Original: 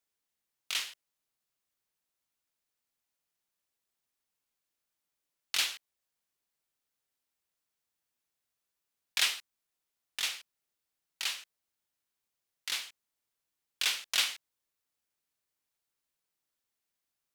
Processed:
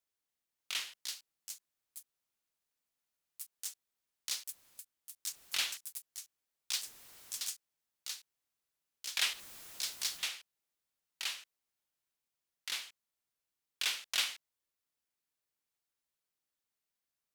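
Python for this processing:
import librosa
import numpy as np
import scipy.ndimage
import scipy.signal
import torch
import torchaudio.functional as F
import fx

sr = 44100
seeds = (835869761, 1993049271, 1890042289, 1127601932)

y = fx.clip_1bit(x, sr, at=(9.33, 10.23))
y = fx.echo_pitch(y, sr, ms=583, semitones=7, count=3, db_per_echo=-3.0)
y = F.gain(torch.from_numpy(y), -4.0).numpy()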